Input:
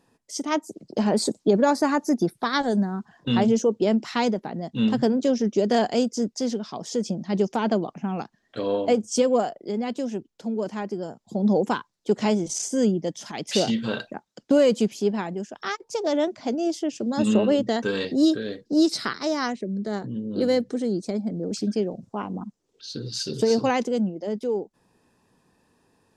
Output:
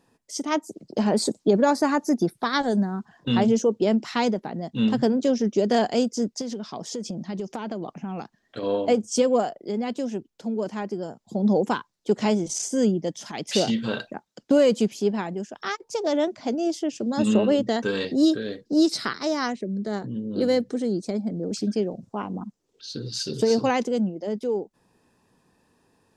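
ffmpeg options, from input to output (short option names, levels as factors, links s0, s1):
-filter_complex "[0:a]asettb=1/sr,asplit=3[s0][s1][s2];[s0]atrim=end=6.414[s3];[s1]atrim=start=6.41:end=8.63,asetpts=PTS-STARTPTS,afade=t=in:d=0.004:c=qsin,afade=t=out:st=2.216:d=0.004:c=qsin,acompressor=threshold=0.0447:ratio=6:attack=3.2:release=140:knee=1:detection=peak[s4];[s2]atrim=start=8.626[s5];[s3][s4]acrossfade=d=0.004:c1=hsin:c2=qsin[s6];[s6][s5]acrossfade=d=0.004:c1=qsin:c2=hsin"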